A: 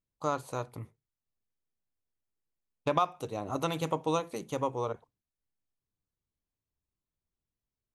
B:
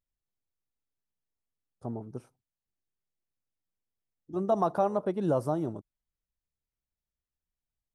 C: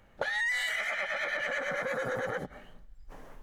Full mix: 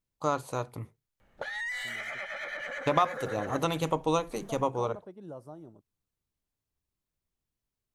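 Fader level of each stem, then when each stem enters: +2.5, −16.5, −5.0 decibels; 0.00, 0.00, 1.20 seconds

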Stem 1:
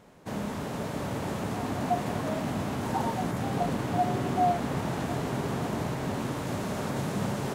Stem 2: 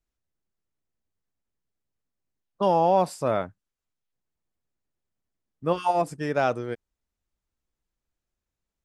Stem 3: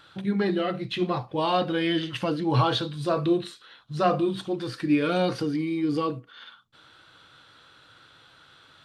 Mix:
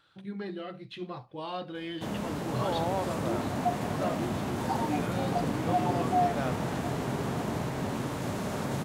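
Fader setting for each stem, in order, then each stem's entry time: −1.0, −11.5, −12.5 decibels; 1.75, 0.00, 0.00 seconds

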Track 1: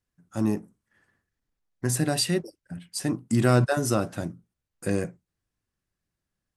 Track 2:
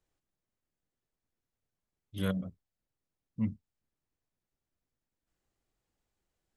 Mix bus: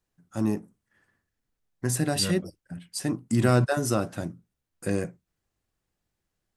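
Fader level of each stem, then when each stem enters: −1.0, 0.0 decibels; 0.00, 0.00 seconds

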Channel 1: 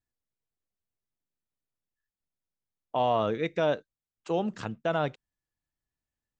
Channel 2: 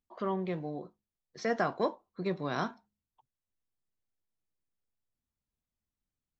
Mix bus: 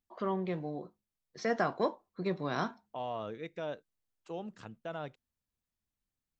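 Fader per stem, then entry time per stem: −12.5, −0.5 decibels; 0.00, 0.00 seconds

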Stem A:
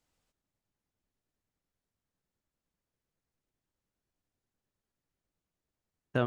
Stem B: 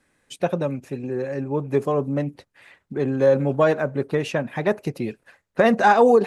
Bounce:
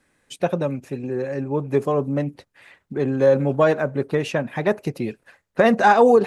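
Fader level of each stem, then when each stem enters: −17.0, +1.0 decibels; 0.00, 0.00 seconds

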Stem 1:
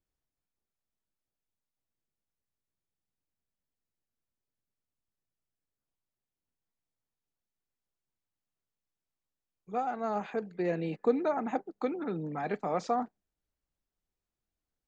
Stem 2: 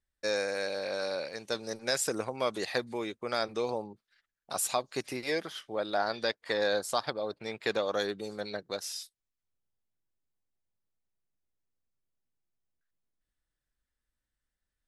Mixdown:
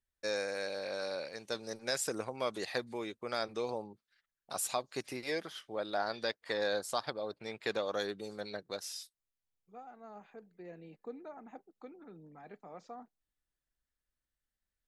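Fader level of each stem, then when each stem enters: −18.0, −4.5 decibels; 0.00, 0.00 seconds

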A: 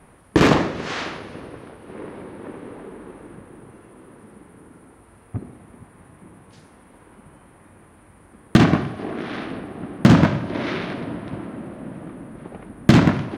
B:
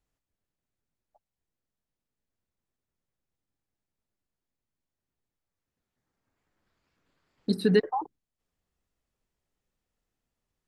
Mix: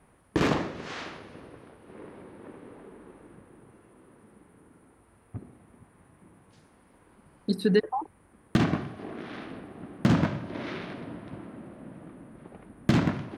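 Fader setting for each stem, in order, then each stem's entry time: −10.0, −0.5 decibels; 0.00, 0.00 seconds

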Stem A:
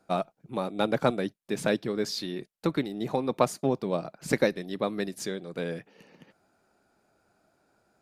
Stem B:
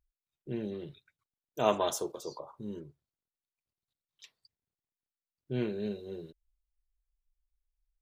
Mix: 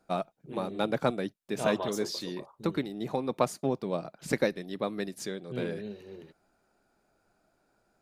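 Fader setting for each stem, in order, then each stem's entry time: −3.0, −4.5 decibels; 0.00, 0.00 seconds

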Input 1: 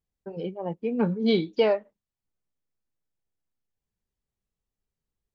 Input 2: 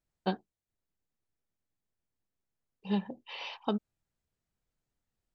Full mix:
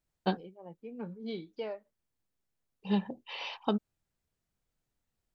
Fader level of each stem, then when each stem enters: −16.5, +1.5 decibels; 0.00, 0.00 seconds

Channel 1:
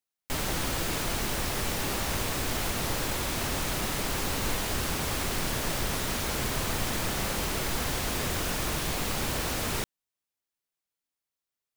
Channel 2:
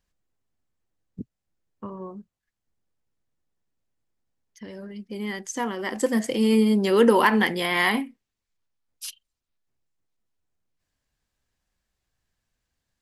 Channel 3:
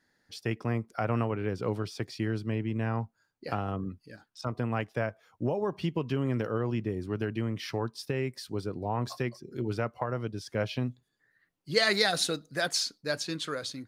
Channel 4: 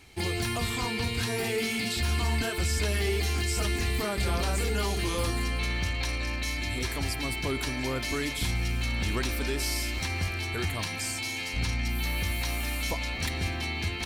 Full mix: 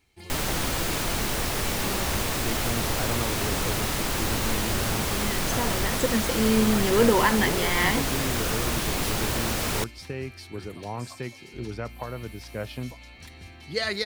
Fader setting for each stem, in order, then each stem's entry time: +3.0, −3.0, −3.0, −14.5 decibels; 0.00, 0.00, 2.00, 0.00 seconds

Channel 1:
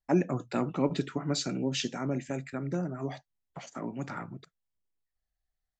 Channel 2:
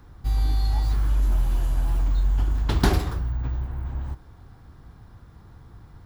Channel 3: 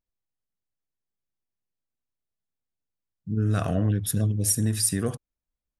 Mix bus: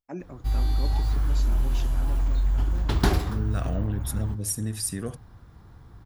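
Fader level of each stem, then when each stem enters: −11.5, −1.5, −5.5 decibels; 0.00, 0.20, 0.00 seconds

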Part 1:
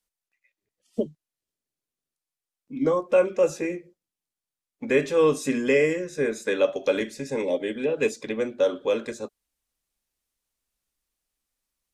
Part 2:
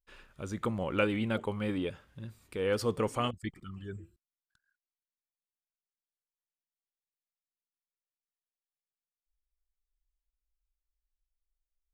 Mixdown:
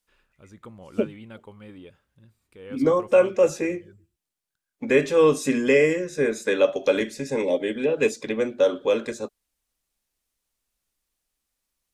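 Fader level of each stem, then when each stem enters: +2.5, −11.0 decibels; 0.00, 0.00 seconds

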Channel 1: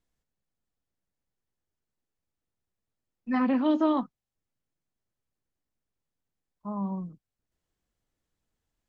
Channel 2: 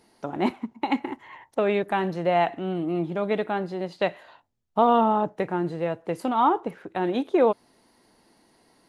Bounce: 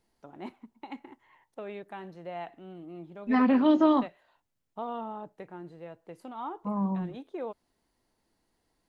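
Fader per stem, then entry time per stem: +2.5, −17.0 decibels; 0.00, 0.00 seconds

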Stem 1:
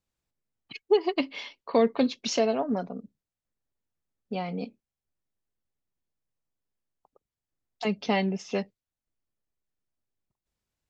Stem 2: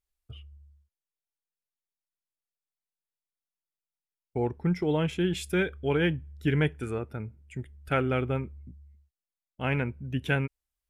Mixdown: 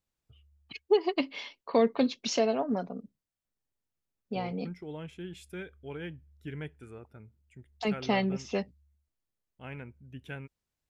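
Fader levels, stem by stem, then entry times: −2.0, −14.5 decibels; 0.00, 0.00 seconds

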